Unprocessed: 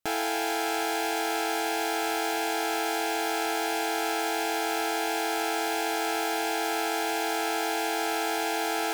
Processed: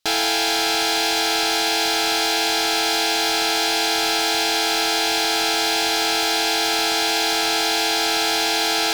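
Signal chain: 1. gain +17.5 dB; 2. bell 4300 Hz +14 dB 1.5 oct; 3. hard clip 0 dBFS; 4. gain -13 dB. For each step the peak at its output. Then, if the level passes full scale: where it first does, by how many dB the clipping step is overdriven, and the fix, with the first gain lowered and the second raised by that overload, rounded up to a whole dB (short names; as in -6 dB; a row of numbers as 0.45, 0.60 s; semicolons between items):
+1.0, +9.5, 0.0, -13.0 dBFS; step 1, 9.5 dB; step 1 +7.5 dB, step 4 -3 dB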